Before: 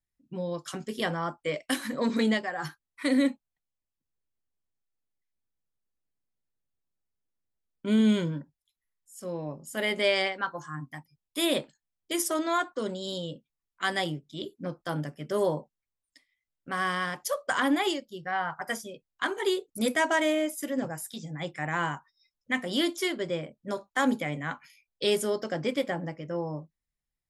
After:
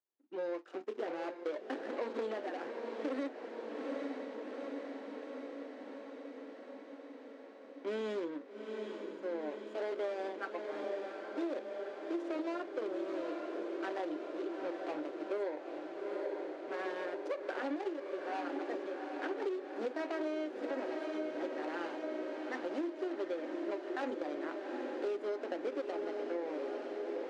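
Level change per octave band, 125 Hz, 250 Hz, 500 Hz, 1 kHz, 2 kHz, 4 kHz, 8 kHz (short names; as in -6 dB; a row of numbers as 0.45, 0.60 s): under -25 dB, -10.0 dB, -5.0 dB, -9.5 dB, -13.5 dB, -19.5 dB, under -25 dB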